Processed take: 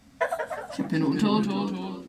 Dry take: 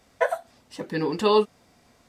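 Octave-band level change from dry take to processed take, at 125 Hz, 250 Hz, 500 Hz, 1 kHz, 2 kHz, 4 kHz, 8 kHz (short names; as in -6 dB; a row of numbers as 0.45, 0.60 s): +7.0, +6.5, -7.0, -3.0, -0.5, -3.0, +1.0 dB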